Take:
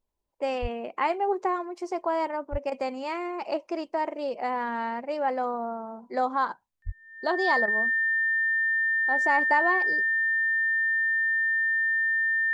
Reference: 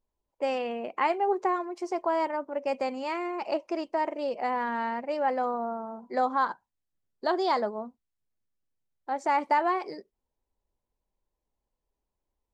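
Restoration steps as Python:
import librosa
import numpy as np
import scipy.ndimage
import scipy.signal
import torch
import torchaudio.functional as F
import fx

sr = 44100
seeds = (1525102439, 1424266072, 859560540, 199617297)

y = fx.notch(x, sr, hz=1800.0, q=30.0)
y = fx.fix_deplosive(y, sr, at_s=(0.61, 2.51, 6.85))
y = fx.fix_interpolate(y, sr, at_s=(2.7, 7.66), length_ms=16.0)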